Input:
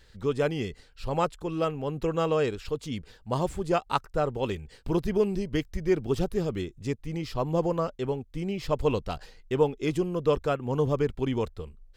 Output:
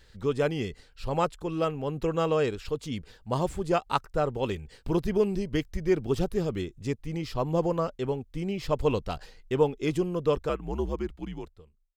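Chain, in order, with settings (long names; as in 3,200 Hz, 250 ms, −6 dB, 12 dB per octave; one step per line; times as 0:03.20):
fade-out on the ending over 1.88 s
0:10.49–0:11.45: frequency shifter −78 Hz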